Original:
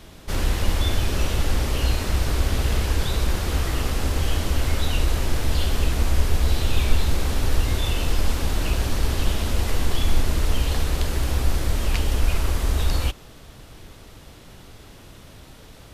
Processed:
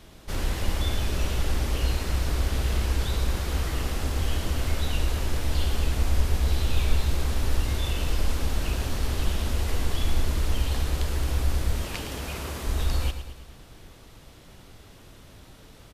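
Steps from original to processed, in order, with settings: 11.82–12.67 s: high-pass 110 Hz 12 dB/octave; on a send: feedback delay 110 ms, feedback 52%, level -10.5 dB; on the sum: trim -5 dB

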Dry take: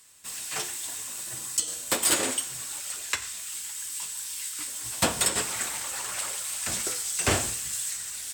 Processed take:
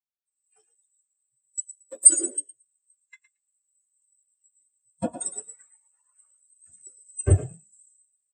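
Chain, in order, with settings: frequency-shifting echo 113 ms, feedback 45%, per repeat +35 Hz, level -4 dB; spectral contrast expander 4:1; trim +8 dB

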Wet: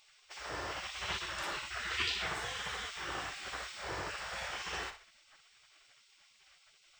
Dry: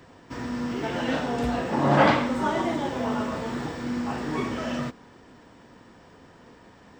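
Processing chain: flutter echo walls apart 10.5 m, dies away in 0.38 s; spectral gate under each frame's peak -20 dB weak

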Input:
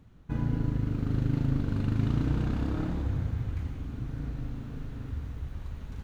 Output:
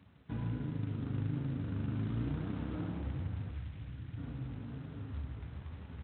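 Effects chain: vibrato 8.5 Hz 7.3 cents; flange 1.2 Hz, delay 9.7 ms, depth 9.9 ms, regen +11%; companded quantiser 6-bit; high-pass 71 Hz 24 dB/octave; 3.51–4.18 s: high-order bell 520 Hz -10.5 dB 2.9 oct; thinning echo 772 ms, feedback 28%, high-pass 670 Hz, level -16 dB; compression 1.5:1, threshold -41 dBFS, peak gain reduction 6 dB; distance through air 170 m; on a send: feedback delay 69 ms, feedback 36%, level -10 dB; on the sum: G.726 24 kbps 8 kHz

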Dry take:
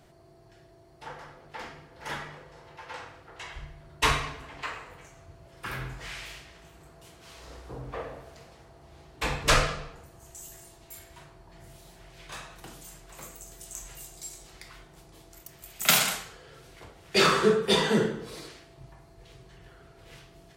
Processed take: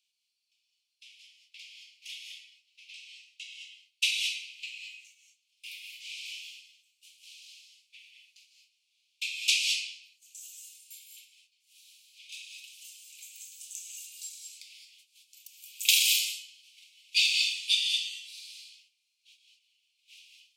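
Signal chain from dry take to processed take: steep high-pass 2.4 kHz 96 dB/octave; gate -59 dBFS, range -11 dB; treble shelf 6.9 kHz -9 dB; gated-style reverb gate 240 ms rising, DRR 2 dB; trim +3.5 dB

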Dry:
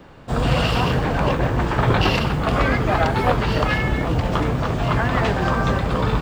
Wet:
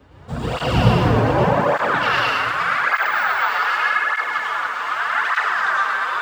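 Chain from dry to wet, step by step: high-pass sweep 64 Hz -> 1.4 kHz, 0.50–1.62 s; 2.93–3.38 s: careless resampling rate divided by 2×, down filtered, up hold; reverberation RT60 3.2 s, pre-delay 93 ms, DRR -8 dB; cancelling through-zero flanger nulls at 0.84 Hz, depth 6.2 ms; trim -4 dB

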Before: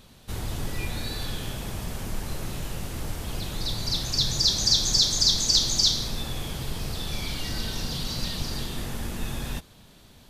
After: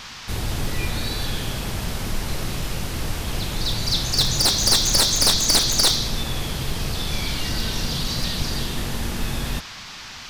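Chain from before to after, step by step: one-sided wavefolder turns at -20.5 dBFS; band noise 770–5700 Hz -44 dBFS; trim +5.5 dB

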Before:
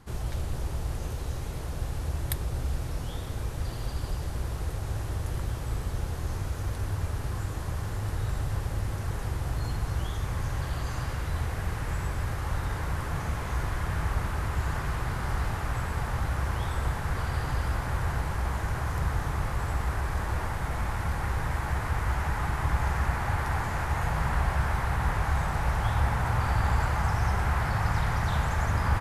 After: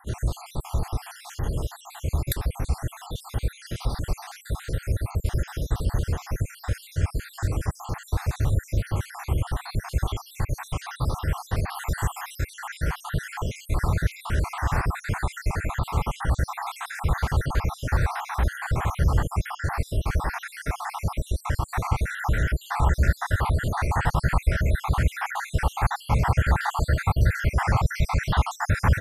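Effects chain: random holes in the spectrogram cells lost 64%; 11.68–12.43 s: treble shelf 6.2 kHz -> 9.4 kHz +9.5 dB; trim +8 dB

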